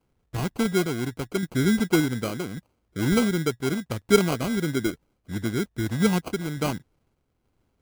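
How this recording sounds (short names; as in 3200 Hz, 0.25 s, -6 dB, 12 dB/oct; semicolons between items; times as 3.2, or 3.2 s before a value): aliases and images of a low sample rate 1800 Hz, jitter 0%; random-step tremolo; MP3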